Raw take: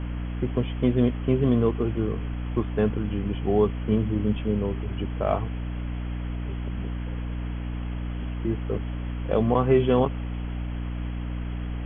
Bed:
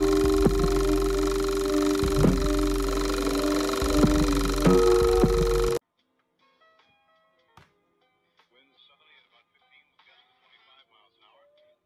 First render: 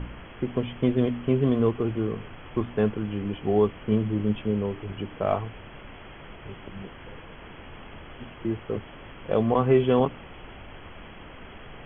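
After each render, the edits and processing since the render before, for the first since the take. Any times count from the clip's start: de-hum 60 Hz, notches 5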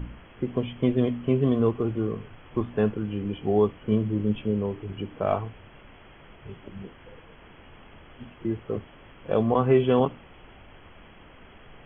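noise print and reduce 6 dB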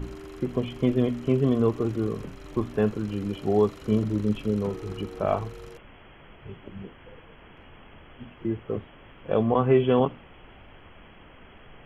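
add bed -20.5 dB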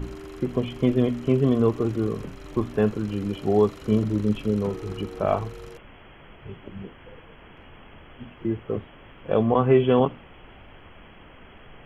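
gain +2 dB

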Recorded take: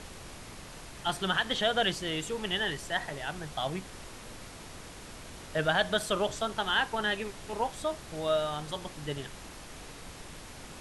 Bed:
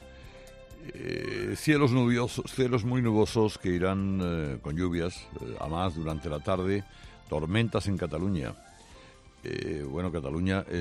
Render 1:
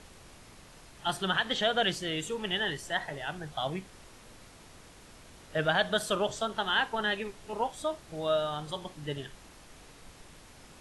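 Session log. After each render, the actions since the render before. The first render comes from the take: noise print and reduce 7 dB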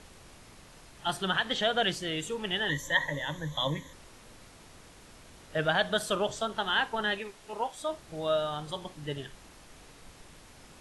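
2.69–3.93 ripple EQ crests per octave 1.1, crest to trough 17 dB; 7.18–7.89 low shelf 300 Hz -8.5 dB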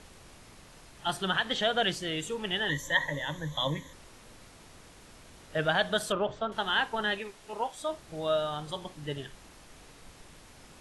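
6.12–6.52 LPF 2300 Hz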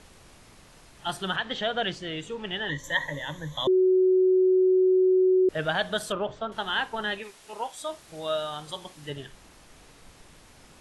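1.36–2.84 air absorption 87 m; 3.67–5.49 bleep 372 Hz -17 dBFS; 7.23–9.1 tilt +1.5 dB/oct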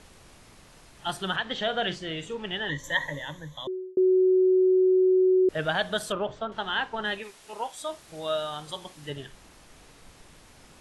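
1.54–2.37 doubler 43 ms -12 dB; 3.06–3.97 fade out; 6.44–7.05 air absorption 75 m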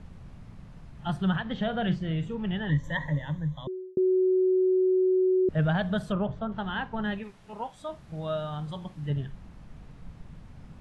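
LPF 1100 Hz 6 dB/oct; resonant low shelf 250 Hz +10 dB, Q 1.5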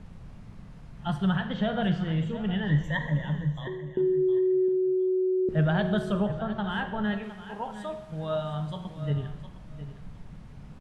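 feedback echo 0.711 s, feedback 17%, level -13.5 dB; two-slope reverb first 0.98 s, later 2.7 s, from -25 dB, DRR 7.5 dB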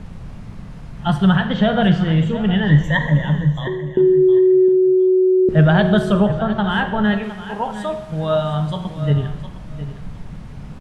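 gain +11.5 dB

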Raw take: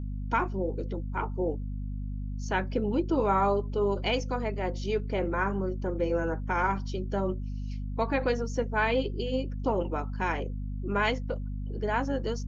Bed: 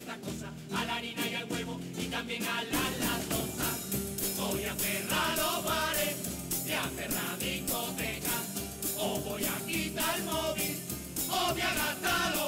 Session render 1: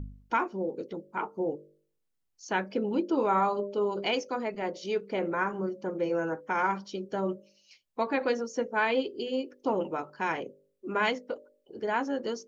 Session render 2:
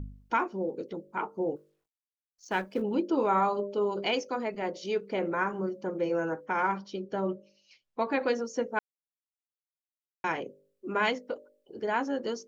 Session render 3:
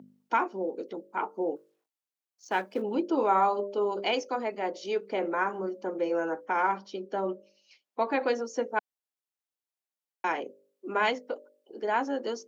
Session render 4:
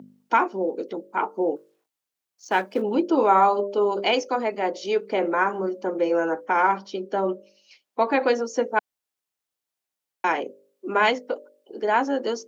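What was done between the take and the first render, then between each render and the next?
de-hum 50 Hz, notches 12
1.56–2.82 G.711 law mismatch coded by A; 6.46–8.07 air absorption 80 m; 8.79–10.24 mute
HPF 230 Hz 24 dB/oct; bell 780 Hz +4 dB 0.57 oct
gain +6.5 dB

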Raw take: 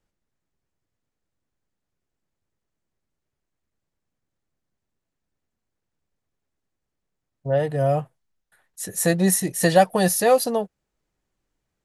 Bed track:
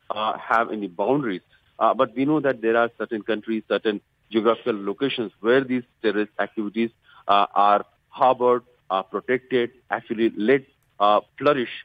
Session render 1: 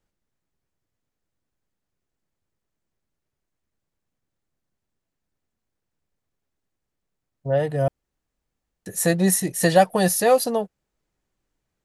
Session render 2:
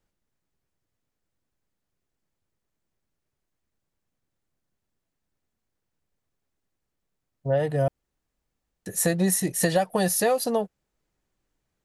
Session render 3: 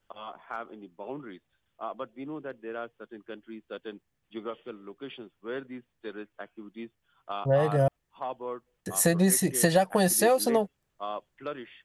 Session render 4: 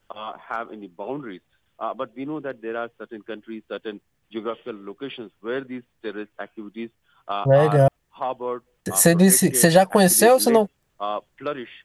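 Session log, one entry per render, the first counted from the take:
7.88–8.86 room tone
compressor 12:1, threshold -18 dBFS, peak gain reduction 9.5 dB
add bed track -17.5 dB
gain +8 dB; limiter -2 dBFS, peak gain reduction 1 dB

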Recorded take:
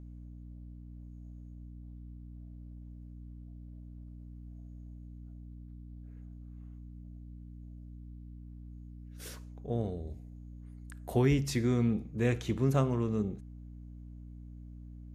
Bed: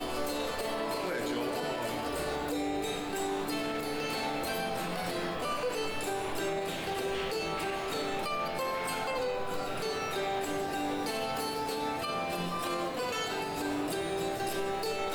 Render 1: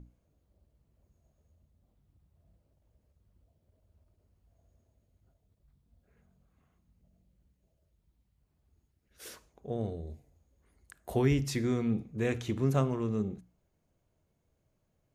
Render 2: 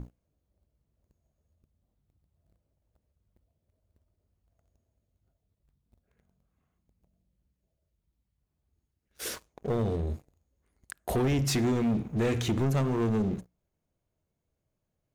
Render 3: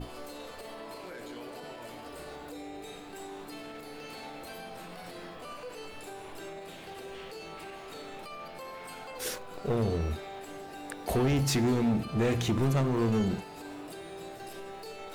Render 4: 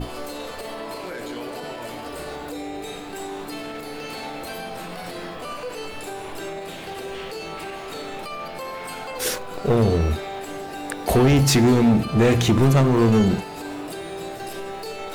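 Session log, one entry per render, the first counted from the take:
notches 60/120/180/240/300 Hz
compressor 3:1, threshold -31 dBFS, peak gain reduction 8 dB; sample leveller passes 3
add bed -10 dB
gain +10.5 dB

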